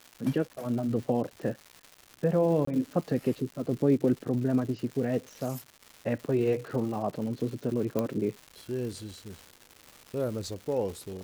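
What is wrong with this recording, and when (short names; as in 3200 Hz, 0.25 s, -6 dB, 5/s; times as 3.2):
crackle 330/s -38 dBFS
2.65–2.67 gap 24 ms
7.99 pop -15 dBFS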